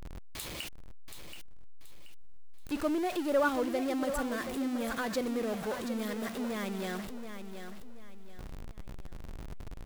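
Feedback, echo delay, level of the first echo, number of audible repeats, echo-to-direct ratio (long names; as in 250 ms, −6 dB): 32%, 729 ms, −9.0 dB, 3, −8.5 dB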